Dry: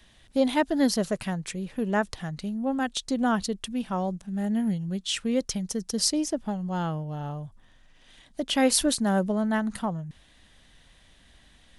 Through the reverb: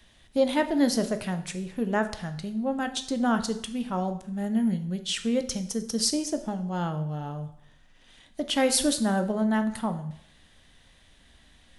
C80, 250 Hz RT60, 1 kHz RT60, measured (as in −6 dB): 15.0 dB, 0.65 s, 0.70 s